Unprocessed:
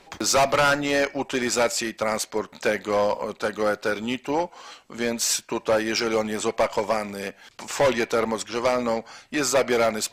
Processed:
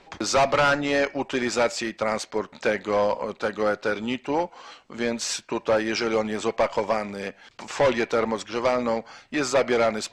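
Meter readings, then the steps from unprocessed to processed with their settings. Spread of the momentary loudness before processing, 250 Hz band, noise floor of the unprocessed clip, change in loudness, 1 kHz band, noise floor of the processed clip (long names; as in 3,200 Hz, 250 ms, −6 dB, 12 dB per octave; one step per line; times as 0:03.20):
9 LU, 0.0 dB, −55 dBFS, −1.0 dB, −0.5 dB, −56 dBFS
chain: high-frequency loss of the air 82 metres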